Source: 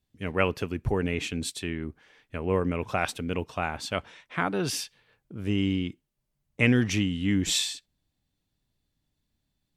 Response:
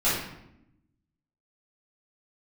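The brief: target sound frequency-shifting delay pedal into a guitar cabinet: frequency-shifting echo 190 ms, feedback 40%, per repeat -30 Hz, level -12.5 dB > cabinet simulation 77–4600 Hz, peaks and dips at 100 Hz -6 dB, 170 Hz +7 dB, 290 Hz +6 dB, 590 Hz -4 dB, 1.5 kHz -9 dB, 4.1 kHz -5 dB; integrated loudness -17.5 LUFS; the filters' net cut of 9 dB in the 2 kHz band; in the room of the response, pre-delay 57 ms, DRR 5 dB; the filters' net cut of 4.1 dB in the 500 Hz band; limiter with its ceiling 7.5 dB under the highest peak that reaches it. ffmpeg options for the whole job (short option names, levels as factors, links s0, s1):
-filter_complex "[0:a]equalizer=f=500:t=o:g=-4.5,equalizer=f=2000:t=o:g=-8.5,alimiter=limit=0.106:level=0:latency=1,asplit=2[s0][s1];[1:a]atrim=start_sample=2205,adelay=57[s2];[s1][s2]afir=irnorm=-1:irlink=0,volume=0.119[s3];[s0][s3]amix=inputs=2:normalize=0,asplit=5[s4][s5][s6][s7][s8];[s5]adelay=190,afreqshift=-30,volume=0.237[s9];[s6]adelay=380,afreqshift=-60,volume=0.0944[s10];[s7]adelay=570,afreqshift=-90,volume=0.038[s11];[s8]adelay=760,afreqshift=-120,volume=0.0151[s12];[s4][s9][s10][s11][s12]amix=inputs=5:normalize=0,highpass=77,equalizer=f=100:t=q:w=4:g=-6,equalizer=f=170:t=q:w=4:g=7,equalizer=f=290:t=q:w=4:g=6,equalizer=f=590:t=q:w=4:g=-4,equalizer=f=1500:t=q:w=4:g=-9,equalizer=f=4100:t=q:w=4:g=-5,lowpass=f=4600:w=0.5412,lowpass=f=4600:w=1.3066,volume=3.55"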